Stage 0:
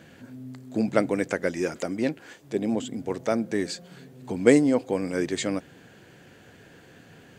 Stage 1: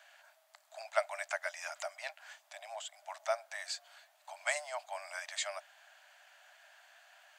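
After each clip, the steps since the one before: Chebyshev high-pass 590 Hz, order 10; gain -4.5 dB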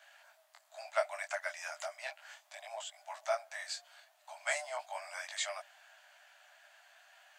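detuned doubles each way 13 cents; gain +3.5 dB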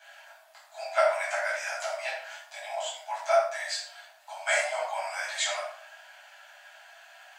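shoebox room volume 820 m³, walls furnished, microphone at 8.2 m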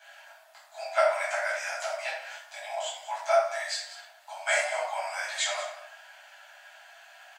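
echo 0.188 s -14.5 dB

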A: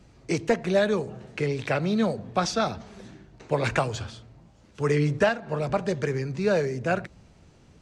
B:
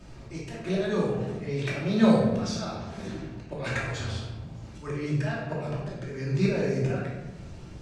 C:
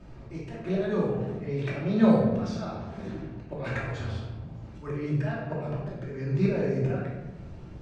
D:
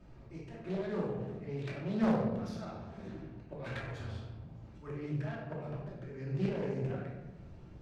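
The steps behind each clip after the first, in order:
auto swell 0.535 s; shoebox room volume 490 m³, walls mixed, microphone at 2.7 m; gain +2 dB
LPF 1600 Hz 6 dB/oct
self-modulated delay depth 0.5 ms; overloaded stage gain 12 dB; gain -8.5 dB

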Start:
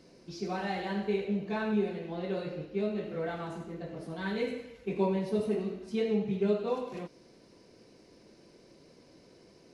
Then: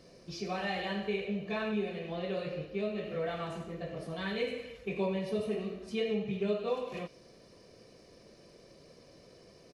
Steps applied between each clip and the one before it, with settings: in parallel at +1 dB: compressor, threshold -37 dBFS, peak gain reduction 14 dB; on the sum: comb 1.7 ms, depth 42%; dynamic EQ 2700 Hz, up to +7 dB, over -56 dBFS, Q 1.7; gain -5.5 dB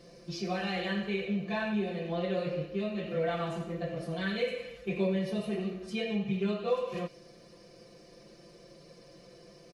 comb 5.8 ms, depth 84%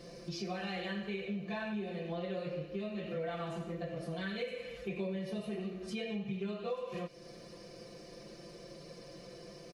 compressor 2.5:1, threshold -44 dBFS, peak gain reduction 13.5 dB; gain +3.5 dB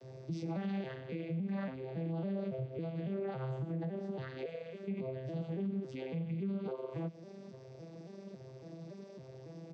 arpeggiated vocoder major triad, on C3, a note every 0.278 s; limiter -34 dBFS, peak gain reduction 7.5 dB; gain +3.5 dB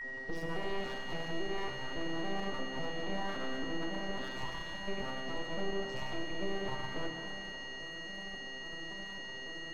full-wave rectifier; whine 1900 Hz -42 dBFS; shimmer reverb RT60 2.3 s, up +7 st, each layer -8 dB, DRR 4.5 dB; gain +2 dB

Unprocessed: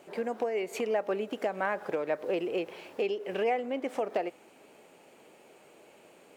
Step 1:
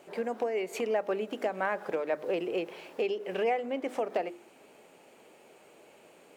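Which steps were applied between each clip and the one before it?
notches 50/100/150/200/250/300/350 Hz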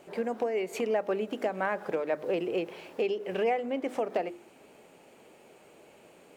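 low shelf 170 Hz +9 dB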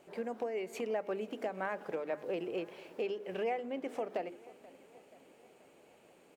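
feedback echo 0.482 s, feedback 59%, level -20 dB; gain -7 dB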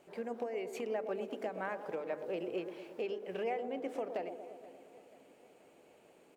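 band-limited delay 0.117 s, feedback 63%, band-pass 450 Hz, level -8 dB; gain -2 dB

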